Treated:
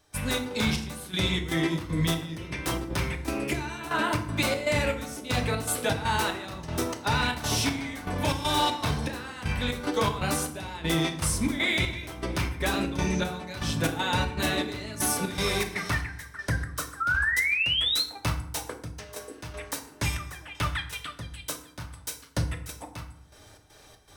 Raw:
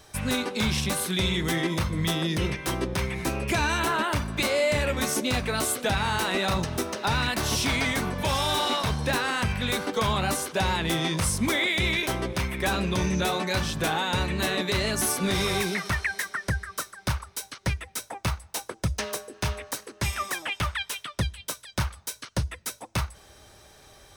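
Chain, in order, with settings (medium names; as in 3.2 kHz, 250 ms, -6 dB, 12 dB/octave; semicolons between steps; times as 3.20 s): trance gate ".xx.xx...xx" 119 bpm -12 dB; painted sound rise, 17.00–18.04 s, 1.3–4.3 kHz -25 dBFS; FDN reverb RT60 0.69 s, low-frequency decay 1.5×, high-frequency decay 0.65×, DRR 4.5 dB; trim -1.5 dB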